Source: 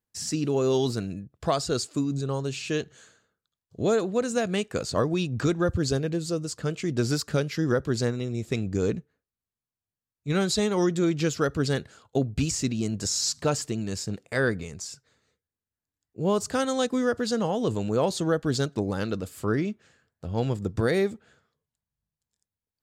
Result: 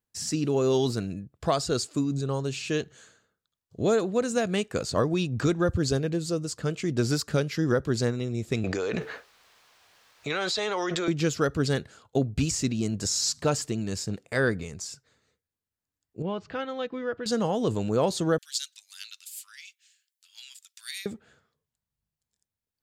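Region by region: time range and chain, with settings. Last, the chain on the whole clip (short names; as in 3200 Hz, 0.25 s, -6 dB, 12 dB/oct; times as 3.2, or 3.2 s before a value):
8.64–11.08 three-band isolator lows -23 dB, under 490 Hz, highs -17 dB, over 5500 Hz + fast leveller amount 100%
16.22–17.26 comb 6.1 ms, depth 31% + upward compressor, threshold -29 dBFS + ladder low-pass 3400 Hz, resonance 35%
18.38–21.06 inverse Chebyshev high-pass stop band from 420 Hz, stop band 80 dB + high shelf 6700 Hz +8.5 dB
whole clip: dry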